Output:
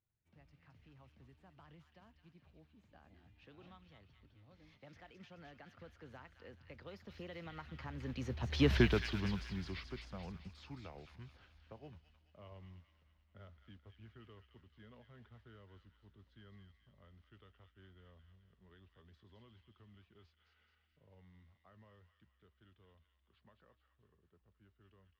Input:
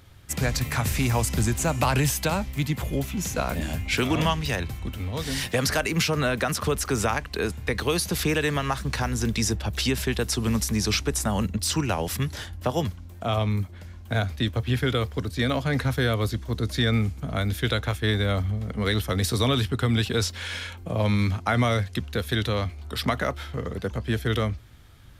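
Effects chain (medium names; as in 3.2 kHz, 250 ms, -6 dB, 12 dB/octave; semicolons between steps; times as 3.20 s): Doppler pass-by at 8.75 s, 44 m/s, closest 4.8 m; modulation noise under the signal 16 dB; distance through air 280 m; feedback echo behind a high-pass 215 ms, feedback 51%, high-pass 1.8 kHz, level -4.5 dB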